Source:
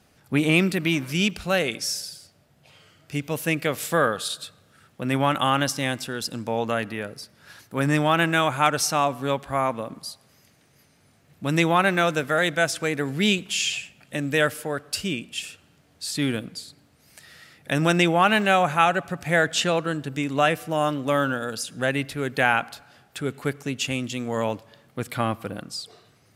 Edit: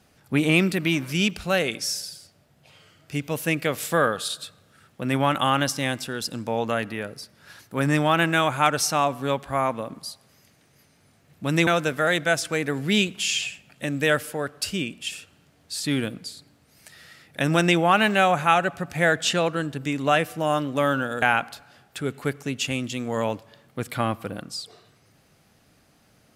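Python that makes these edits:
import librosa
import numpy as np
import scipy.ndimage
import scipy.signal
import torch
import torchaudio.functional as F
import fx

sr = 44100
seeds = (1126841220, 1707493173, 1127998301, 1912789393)

y = fx.edit(x, sr, fx.cut(start_s=11.67, length_s=0.31),
    fx.cut(start_s=21.53, length_s=0.89), tone=tone)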